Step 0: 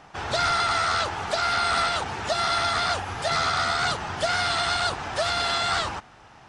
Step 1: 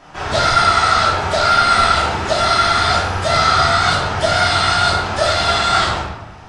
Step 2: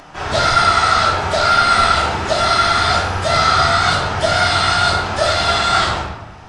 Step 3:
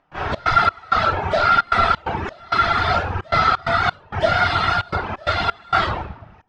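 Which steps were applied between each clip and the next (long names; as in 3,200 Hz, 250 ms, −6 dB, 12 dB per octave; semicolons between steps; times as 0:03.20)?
rectangular room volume 380 cubic metres, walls mixed, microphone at 2.9 metres; level +1.5 dB
upward compression, threshold −37 dBFS
low-pass filter 2,800 Hz 12 dB per octave; reverb reduction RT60 1 s; gate pattern ".xx.xx..xxxxxx" 131 BPM −24 dB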